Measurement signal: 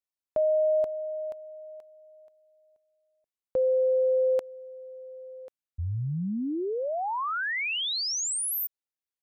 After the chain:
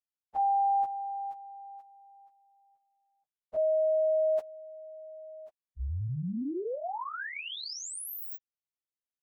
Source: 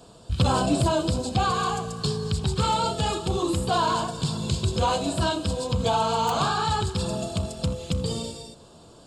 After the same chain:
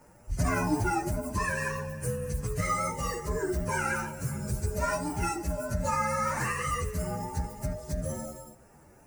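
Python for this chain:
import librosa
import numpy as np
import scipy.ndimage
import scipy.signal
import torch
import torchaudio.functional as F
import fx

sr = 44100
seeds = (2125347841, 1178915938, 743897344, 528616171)

y = fx.partial_stretch(x, sr, pct=127)
y = y * 10.0 ** (-2.5 / 20.0)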